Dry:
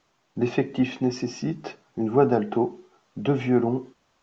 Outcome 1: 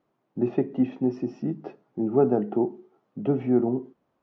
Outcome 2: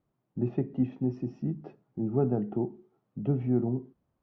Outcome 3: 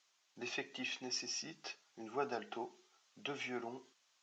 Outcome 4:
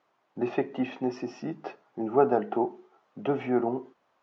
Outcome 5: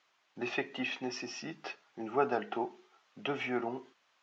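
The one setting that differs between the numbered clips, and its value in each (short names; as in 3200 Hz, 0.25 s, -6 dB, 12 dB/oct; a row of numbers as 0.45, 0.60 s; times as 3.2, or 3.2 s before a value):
band-pass, frequency: 290, 100, 6400, 810, 2400 Hz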